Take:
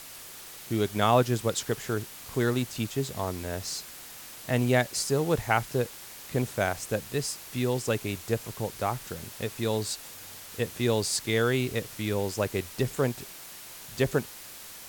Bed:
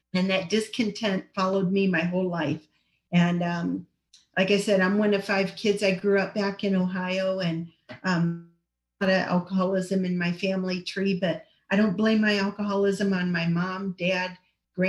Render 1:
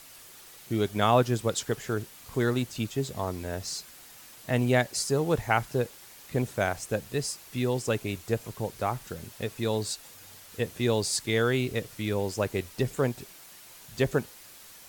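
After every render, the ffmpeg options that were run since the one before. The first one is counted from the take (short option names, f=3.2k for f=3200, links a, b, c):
-af "afftdn=nr=6:nf=-45"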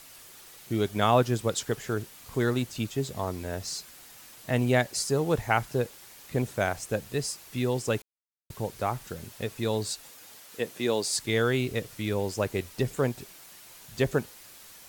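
-filter_complex "[0:a]asettb=1/sr,asplit=3[a][b][c];[a]atrim=end=10.104[d];[b]atrim=start=10.1:end=11.16,asetpts=PTS-STARTPTS,afade=t=in:d=0.004:c=qsin,afade=t=out:st=1.056:d=0.004:c=qsin,highpass=220[e];[c]atrim=start=11.156[f];[d][e]acrossfade=d=0.004:c1=hsin:c2=qsin[g];[g][f]acrossfade=d=0.004:c1=qsin:c2=hsin,asplit=3[h][i][j];[h]atrim=end=8.02,asetpts=PTS-STARTPTS,afade=t=out:st=8.016:d=0.004:c=hsin[k];[i]atrim=start=8.02:end=8.5,asetpts=PTS-STARTPTS,volume=0[l];[j]atrim=start=8.5,asetpts=PTS-STARTPTS,afade=t=in:d=0.004:c=hsin[m];[k][l][m]concat=n=3:v=0:a=1"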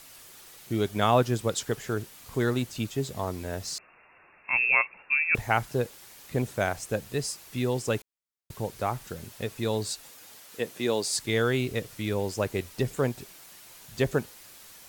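-filter_complex "[0:a]asettb=1/sr,asplit=3[a][b][c];[a]atrim=end=3.784[d];[b]atrim=start=3.78:end=5.35,asetpts=PTS-STARTPTS,afade=t=in:d=0.004:c=qsin,afade=t=out:st=1.566:d=0.004:c=qsin,lowpass=f=2.4k:t=q:w=0.5098,lowpass=f=2.4k:t=q:w=0.6013,lowpass=f=2.4k:t=q:w=0.9,lowpass=f=2.4k:t=q:w=2.563,afreqshift=-2800[e];[c]atrim=start=5.346[f];[d][e]acrossfade=d=0.004:c1=hsin:c2=qsin[g];[g][f]acrossfade=d=0.004:c1=qsin:c2=hsin"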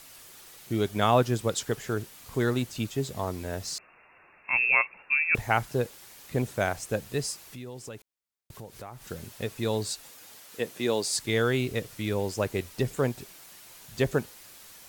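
-filter_complex "[0:a]asettb=1/sr,asplit=3[a][b][c];[a]atrim=end=7.424[d];[b]atrim=start=7.42:end=9.06,asetpts=PTS-STARTPTS,afade=t=in:d=0.004:c=qsin,afade=t=out:st=1.636:d=0.004:c=qsin,acompressor=threshold=-42dB:ratio=3:attack=3.2:release=140:knee=1:detection=peak[e];[c]atrim=start=9.056[f];[d][e]acrossfade=d=0.004:c1=hsin:c2=qsin[g];[g][f]acrossfade=d=0.004:c1=qsin:c2=hsin"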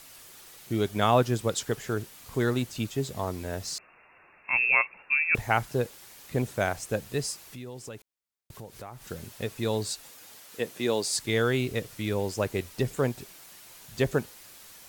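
-af anull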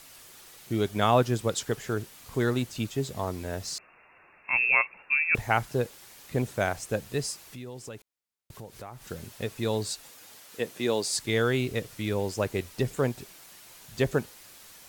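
-af "highshelf=f=12k:g=-2.5"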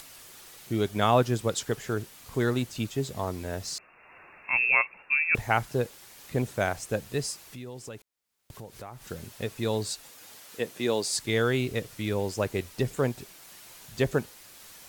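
-af "acompressor=mode=upward:threshold=-44dB:ratio=2.5"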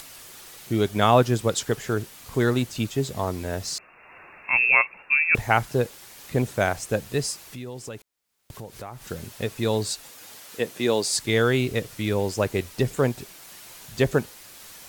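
-af "volume=4.5dB"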